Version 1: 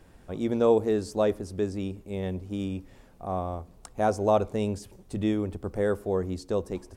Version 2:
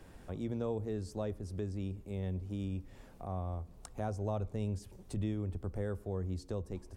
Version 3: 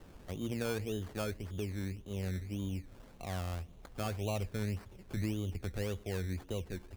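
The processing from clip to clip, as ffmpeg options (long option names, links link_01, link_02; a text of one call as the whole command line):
ffmpeg -i in.wav -filter_complex "[0:a]acrossover=split=140[link_01][link_02];[link_02]acompressor=threshold=-49dB:ratio=2[link_03];[link_01][link_03]amix=inputs=2:normalize=0" out.wav
ffmpeg -i in.wav -af "acrusher=samples=18:mix=1:aa=0.000001:lfo=1:lforange=10.8:lforate=1.8" out.wav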